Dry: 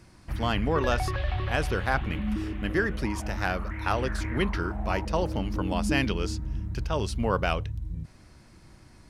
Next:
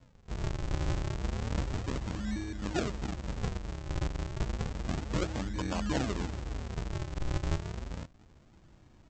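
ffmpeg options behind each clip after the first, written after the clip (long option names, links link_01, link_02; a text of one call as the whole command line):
ffmpeg -i in.wav -af "highshelf=frequency=4500:gain=-9,aresample=16000,acrusher=samples=39:mix=1:aa=0.000001:lfo=1:lforange=62.4:lforate=0.31,aresample=44100,volume=-5.5dB" out.wav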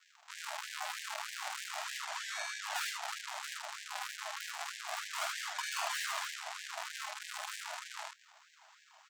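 ffmpeg -i in.wav -filter_complex "[0:a]aeval=exprs='(tanh(79.4*val(0)+0.75)-tanh(0.75))/79.4':channel_layout=same,asplit=2[link_01][link_02];[link_02]aecho=0:1:48|77:0.562|0.708[link_03];[link_01][link_03]amix=inputs=2:normalize=0,afftfilt=real='re*gte(b*sr/1024,590*pow(1600/590,0.5+0.5*sin(2*PI*3.2*pts/sr)))':imag='im*gte(b*sr/1024,590*pow(1600/590,0.5+0.5*sin(2*PI*3.2*pts/sr)))':win_size=1024:overlap=0.75,volume=11dB" out.wav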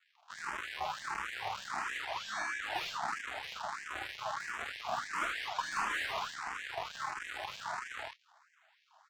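ffmpeg -i in.wav -filter_complex "[0:a]agate=range=-9dB:threshold=-51dB:ratio=16:detection=peak,asplit=2[link_01][link_02];[link_02]highpass=frequency=720:poles=1,volume=11dB,asoftclip=type=tanh:threshold=-22.5dB[link_03];[link_01][link_03]amix=inputs=2:normalize=0,lowpass=frequency=1300:poles=1,volume=-6dB,asplit=2[link_04][link_05];[link_05]afreqshift=1.5[link_06];[link_04][link_06]amix=inputs=2:normalize=1,volume=5.5dB" out.wav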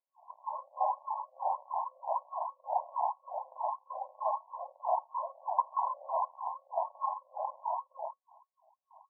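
ffmpeg -i in.wav -af "afftfilt=real='re*between(b*sr/4096,510,1100)':imag='im*between(b*sr/4096,510,1100)':win_size=4096:overlap=0.75,volume=8dB" out.wav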